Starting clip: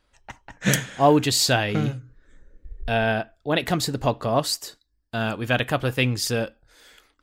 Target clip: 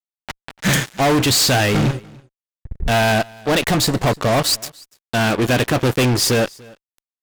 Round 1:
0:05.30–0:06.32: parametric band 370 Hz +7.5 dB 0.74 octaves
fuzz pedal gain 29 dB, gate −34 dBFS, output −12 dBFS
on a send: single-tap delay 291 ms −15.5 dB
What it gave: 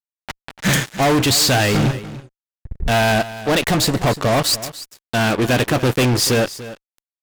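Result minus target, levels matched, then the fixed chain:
echo-to-direct +9 dB
0:05.30–0:06.32: parametric band 370 Hz +7.5 dB 0.74 octaves
fuzz pedal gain 29 dB, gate −34 dBFS, output −12 dBFS
on a send: single-tap delay 291 ms −24.5 dB

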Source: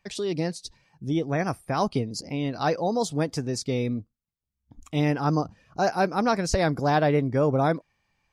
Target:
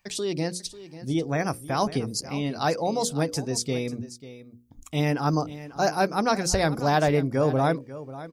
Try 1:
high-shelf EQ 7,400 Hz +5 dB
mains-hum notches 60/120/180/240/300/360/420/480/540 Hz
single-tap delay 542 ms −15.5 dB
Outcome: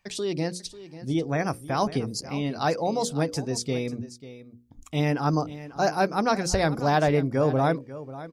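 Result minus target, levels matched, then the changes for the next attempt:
8,000 Hz band −3.0 dB
change: high-shelf EQ 7,400 Hz +12.5 dB

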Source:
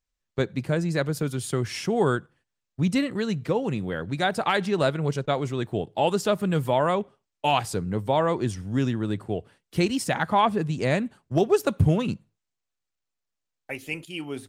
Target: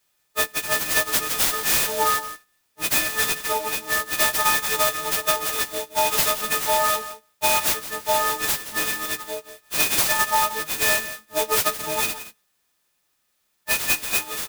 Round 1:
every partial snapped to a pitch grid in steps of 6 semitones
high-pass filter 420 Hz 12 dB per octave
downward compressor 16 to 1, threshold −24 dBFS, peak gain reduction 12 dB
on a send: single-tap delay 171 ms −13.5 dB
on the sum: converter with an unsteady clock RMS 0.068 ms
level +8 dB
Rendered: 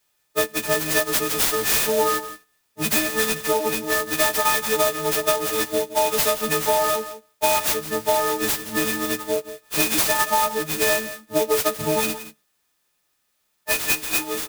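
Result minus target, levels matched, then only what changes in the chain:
500 Hz band +6.0 dB
change: high-pass filter 1,000 Hz 12 dB per octave

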